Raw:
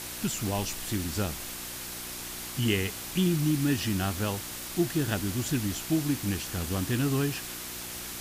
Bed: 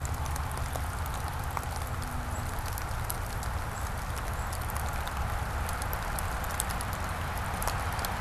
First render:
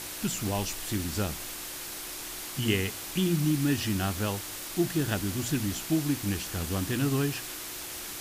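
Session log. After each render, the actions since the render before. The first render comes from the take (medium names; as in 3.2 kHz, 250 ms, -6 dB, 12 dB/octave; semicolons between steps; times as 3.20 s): de-hum 60 Hz, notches 4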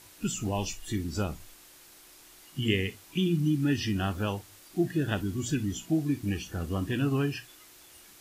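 noise print and reduce 15 dB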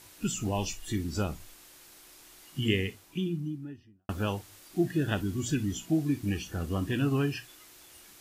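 2.59–4.09 s: studio fade out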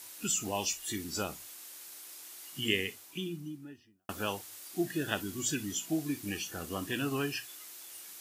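high-pass 460 Hz 6 dB/octave; treble shelf 5.4 kHz +8.5 dB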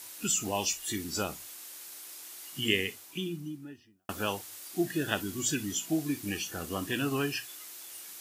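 trim +2.5 dB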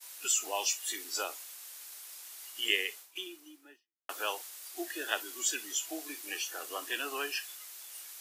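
expander -43 dBFS; Bessel high-pass 620 Hz, order 8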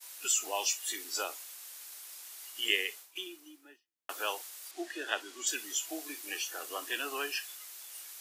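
4.71–5.47 s: distance through air 61 m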